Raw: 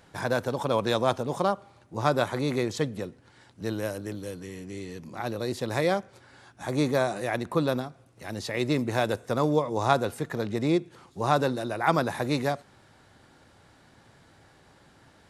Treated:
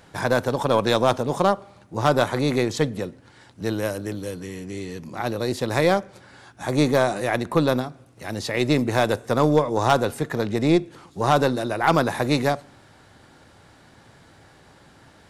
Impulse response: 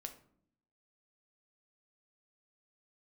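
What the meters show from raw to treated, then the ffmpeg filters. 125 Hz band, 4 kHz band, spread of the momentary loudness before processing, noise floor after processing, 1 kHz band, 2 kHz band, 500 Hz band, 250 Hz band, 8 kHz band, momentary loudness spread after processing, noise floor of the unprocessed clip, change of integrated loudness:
+5.5 dB, +6.0 dB, 14 LU, −53 dBFS, +5.0 dB, +5.5 dB, +5.5 dB, +5.5 dB, +6.0 dB, 13 LU, −58 dBFS, +5.5 dB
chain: -filter_complex "[0:a]aeval=exprs='0.447*(cos(1*acos(clip(val(0)/0.447,-1,1)))-cos(1*PI/2))+0.126*(cos(2*acos(clip(val(0)/0.447,-1,1)))-cos(2*PI/2))+0.0708*(cos(5*acos(clip(val(0)/0.447,-1,1)))-cos(5*PI/2))+0.0316*(cos(7*acos(clip(val(0)/0.447,-1,1)))-cos(7*PI/2))':channel_layout=same,asplit=2[link_01][link_02];[1:a]atrim=start_sample=2205[link_03];[link_02][link_03]afir=irnorm=-1:irlink=0,volume=-11.5dB[link_04];[link_01][link_04]amix=inputs=2:normalize=0,volume=9dB,asoftclip=hard,volume=-9dB,volume=2dB"

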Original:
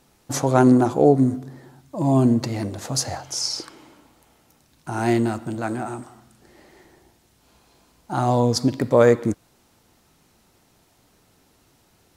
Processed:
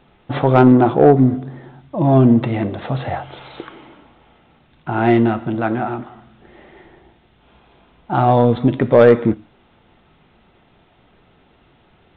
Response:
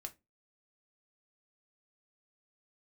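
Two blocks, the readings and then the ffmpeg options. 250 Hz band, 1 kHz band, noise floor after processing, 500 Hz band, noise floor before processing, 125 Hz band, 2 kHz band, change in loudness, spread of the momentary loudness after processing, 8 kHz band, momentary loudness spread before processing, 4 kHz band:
+5.0 dB, +6.5 dB, −55 dBFS, +5.5 dB, −61 dBFS, +6.0 dB, +6.0 dB, +5.5 dB, 17 LU, below −35 dB, 15 LU, −6.5 dB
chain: -filter_complex "[0:a]asplit=2[link_01][link_02];[1:a]atrim=start_sample=2205[link_03];[link_02][link_03]afir=irnorm=-1:irlink=0,volume=-1.5dB[link_04];[link_01][link_04]amix=inputs=2:normalize=0,aresample=8000,aresample=44100,acontrast=20,volume=-1dB"

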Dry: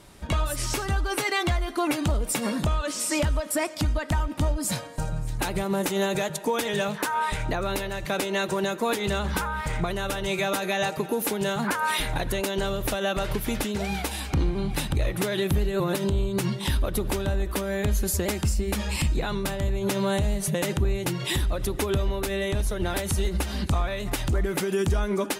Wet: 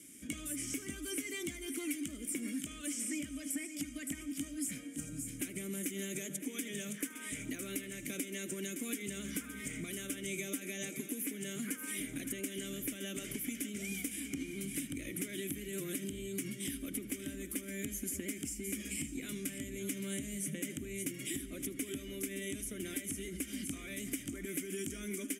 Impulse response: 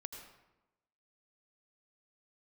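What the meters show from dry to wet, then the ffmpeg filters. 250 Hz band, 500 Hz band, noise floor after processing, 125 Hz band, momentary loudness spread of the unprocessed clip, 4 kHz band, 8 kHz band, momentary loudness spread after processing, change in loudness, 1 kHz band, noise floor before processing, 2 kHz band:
−9.5 dB, −17.5 dB, −48 dBFS, −20.5 dB, 3 LU, −14.0 dB, −5.5 dB, 3 LU, −12.5 dB, −30.5 dB, −36 dBFS, −13.5 dB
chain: -filter_complex "[0:a]asplit=3[link_01][link_02][link_03];[link_01]bandpass=frequency=270:width_type=q:width=8,volume=0dB[link_04];[link_02]bandpass=frequency=2290:width_type=q:width=8,volume=-6dB[link_05];[link_03]bandpass=frequency=3010:width_type=q:width=8,volume=-9dB[link_06];[link_04][link_05][link_06]amix=inputs=3:normalize=0,aecho=1:1:564:0.211,aexciter=amount=15.8:drive=9.5:freq=6500,acrossover=split=1100|3000[link_07][link_08][link_09];[link_07]acompressor=threshold=-44dB:ratio=4[link_10];[link_08]acompressor=threshold=-54dB:ratio=4[link_11];[link_09]acompressor=threshold=-47dB:ratio=4[link_12];[link_10][link_11][link_12]amix=inputs=3:normalize=0,asplit=2[link_13][link_14];[1:a]atrim=start_sample=2205,adelay=77[link_15];[link_14][link_15]afir=irnorm=-1:irlink=0,volume=-15dB[link_16];[link_13][link_16]amix=inputs=2:normalize=0,volume=5dB"

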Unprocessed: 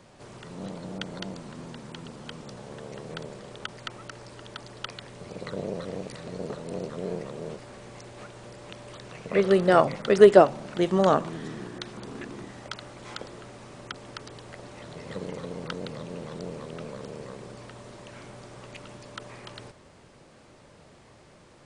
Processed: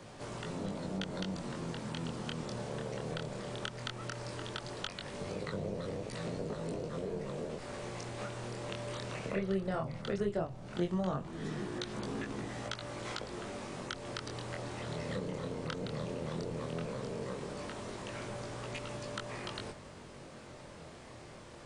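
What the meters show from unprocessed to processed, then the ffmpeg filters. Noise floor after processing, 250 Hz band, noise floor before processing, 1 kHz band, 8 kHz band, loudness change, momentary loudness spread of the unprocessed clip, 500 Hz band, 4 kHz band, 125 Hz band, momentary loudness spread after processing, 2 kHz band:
−51 dBFS, −6.5 dB, −54 dBFS, −11.5 dB, can't be measured, −13.0 dB, 23 LU, −13.5 dB, −3.5 dB, −2.5 dB, 7 LU, −6.5 dB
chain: -filter_complex "[0:a]acrossover=split=120[link_01][link_02];[link_02]acompressor=threshold=-39dB:ratio=5[link_03];[link_01][link_03]amix=inputs=2:normalize=0,flanger=delay=18.5:depth=7.7:speed=0.16,volume=6dB"

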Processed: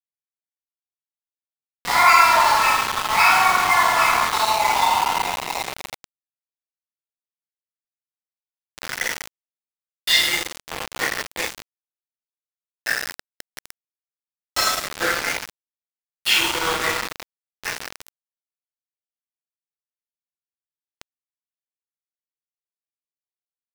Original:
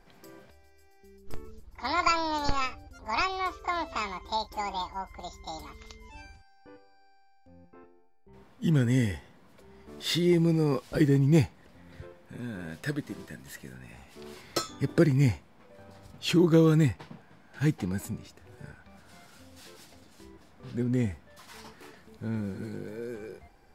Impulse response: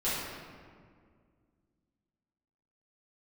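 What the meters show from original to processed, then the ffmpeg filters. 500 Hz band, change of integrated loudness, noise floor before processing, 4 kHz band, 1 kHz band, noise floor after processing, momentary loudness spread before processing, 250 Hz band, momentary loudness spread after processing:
0.0 dB, +9.5 dB, −58 dBFS, +14.0 dB, +14.5 dB, below −85 dBFS, 22 LU, −12.5 dB, 18 LU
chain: -filter_complex "[0:a]adynamicequalizer=threshold=0.00282:dfrequency=1900:dqfactor=2:tfrequency=1900:tqfactor=2:attack=5:release=100:ratio=0.375:range=2:mode=boostabove:tftype=bell,asplit=2[link_01][link_02];[link_02]adelay=45,volume=-9.5dB[link_03];[link_01][link_03]amix=inputs=2:normalize=0[link_04];[1:a]atrim=start_sample=2205,asetrate=29547,aresample=44100[link_05];[link_04][link_05]afir=irnorm=-1:irlink=0,afftdn=noise_reduction=22:noise_floor=-35,asplit=2[link_06][link_07];[link_07]acompressor=threshold=-25dB:ratio=6,volume=1dB[link_08];[link_06][link_08]amix=inputs=2:normalize=0,highpass=frequency=740:width=0.5412,highpass=frequency=740:width=1.3066,aecho=1:1:30|79:0.251|0.2,dynaudnorm=framelen=380:gausssize=17:maxgain=3.5dB,aeval=exprs='val(0)*gte(abs(val(0)),0.112)':channel_layout=same"

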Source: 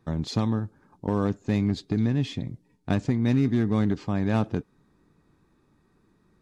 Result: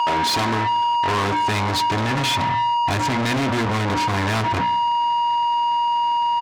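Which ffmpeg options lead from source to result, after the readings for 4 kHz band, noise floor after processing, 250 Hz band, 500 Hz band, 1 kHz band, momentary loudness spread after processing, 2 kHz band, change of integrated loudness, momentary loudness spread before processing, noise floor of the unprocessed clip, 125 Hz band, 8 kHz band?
+18.0 dB, −21 dBFS, −1.0 dB, +5.0 dB, +23.0 dB, 1 LU, +16.0 dB, +6.5 dB, 12 LU, −66 dBFS, +1.0 dB, can't be measured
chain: -filter_complex "[0:a]aeval=exprs='val(0)+0.0126*sin(2*PI*950*n/s)':channel_layout=same,asubboost=boost=11.5:cutoff=130,bandreject=frequency=60:width_type=h:width=6,bandreject=frequency=120:width_type=h:width=6,bandreject=frequency=180:width_type=h:width=6,bandreject=frequency=240:width_type=h:width=6,bandreject=frequency=300:width_type=h:width=6,aecho=1:1:2.9:0.53,asplit=2[link_01][link_02];[link_02]highpass=frequency=720:poles=1,volume=40dB,asoftclip=type=tanh:threshold=-4.5dB[link_03];[link_01][link_03]amix=inputs=2:normalize=0,lowpass=frequency=3600:poles=1,volume=-6dB,highpass=frequency=82:poles=1,asplit=2[link_04][link_05];[link_05]adelay=145,lowpass=frequency=2000:poles=1,volume=-18dB,asplit=2[link_06][link_07];[link_07]adelay=145,lowpass=frequency=2000:poles=1,volume=0.34,asplit=2[link_08][link_09];[link_09]adelay=145,lowpass=frequency=2000:poles=1,volume=0.34[link_10];[link_04][link_06][link_08][link_10]amix=inputs=4:normalize=0,asoftclip=type=tanh:threshold=-11dB,lowshelf=frequency=450:gain=-5,volume=-3.5dB"

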